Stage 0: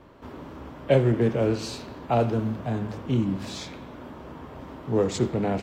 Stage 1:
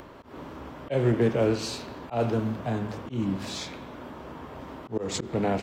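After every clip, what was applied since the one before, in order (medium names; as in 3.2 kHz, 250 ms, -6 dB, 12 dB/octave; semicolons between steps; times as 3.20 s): bass shelf 330 Hz -4.5 dB; upward compressor, threshold -42 dBFS; slow attack 155 ms; trim +2 dB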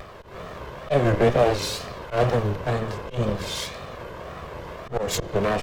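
comb filter that takes the minimum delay 1.8 ms; wow and flutter 140 cents; trim +6.5 dB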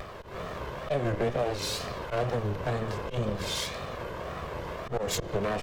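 compression 3:1, threshold -28 dBFS, peak gain reduction 11 dB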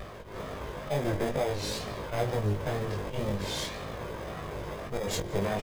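in parallel at -6 dB: sample-and-hold 31×; on the sum: chorus 0.48 Hz, delay 18.5 ms, depth 2.1 ms; delay 174 ms -23 dB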